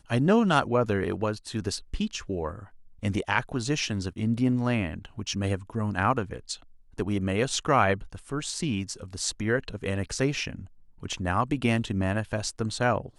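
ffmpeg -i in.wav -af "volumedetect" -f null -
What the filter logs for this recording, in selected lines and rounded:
mean_volume: -27.9 dB
max_volume: -7.2 dB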